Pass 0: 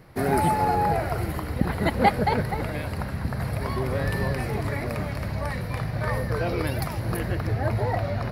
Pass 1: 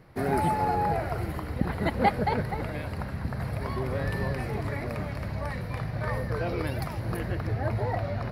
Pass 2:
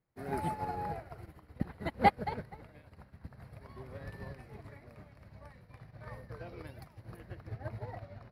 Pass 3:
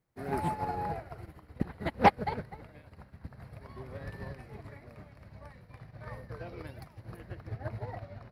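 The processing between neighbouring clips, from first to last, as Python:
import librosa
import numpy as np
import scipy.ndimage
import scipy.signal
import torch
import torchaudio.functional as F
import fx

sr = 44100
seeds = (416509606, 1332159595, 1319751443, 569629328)

y1 = fx.high_shelf(x, sr, hz=5400.0, db=-6.0)
y1 = y1 * 10.0 ** (-3.5 / 20.0)
y2 = fx.upward_expand(y1, sr, threshold_db=-38.0, expansion=2.5)
y3 = fx.doppler_dist(y2, sr, depth_ms=0.39)
y3 = y3 * 10.0 ** (3.0 / 20.0)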